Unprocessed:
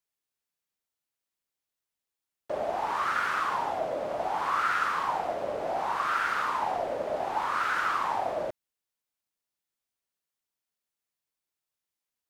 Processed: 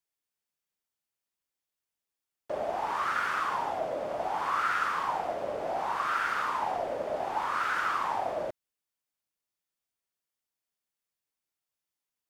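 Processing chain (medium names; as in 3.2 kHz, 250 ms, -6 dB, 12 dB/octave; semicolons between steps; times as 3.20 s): band-stop 4 kHz, Q 30; trim -1.5 dB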